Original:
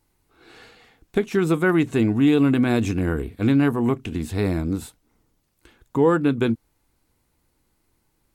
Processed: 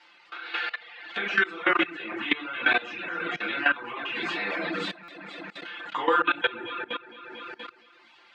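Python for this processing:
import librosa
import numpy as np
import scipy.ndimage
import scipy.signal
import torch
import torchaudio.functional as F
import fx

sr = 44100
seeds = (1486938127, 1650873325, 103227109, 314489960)

p1 = scipy.signal.sosfilt(scipy.signal.butter(2, 1300.0, 'highpass', fs=sr, output='sos'), x)
p2 = p1 + 0.9 * np.pad(p1, (int(5.8 * sr / 1000.0), 0))[:len(p1)]
p3 = p2 + fx.echo_alternate(p2, sr, ms=116, hz=1900.0, feedback_pct=68, wet_db=-6.5, dry=0)
p4 = fx.room_shoebox(p3, sr, seeds[0], volume_m3=56.0, walls='mixed', distance_m=2.3)
p5 = fx.dereverb_blind(p4, sr, rt60_s=0.66)
p6 = scipy.signal.sosfilt(scipy.signal.butter(4, 3700.0, 'lowpass', fs=sr, output='sos'), p5)
p7 = fx.level_steps(p6, sr, step_db=20)
p8 = fx.buffer_glitch(p7, sr, at_s=(5.03,), block=256, repeats=8)
p9 = fx.band_squash(p8, sr, depth_pct=70)
y = p9 * 10.0 ** (2.5 / 20.0)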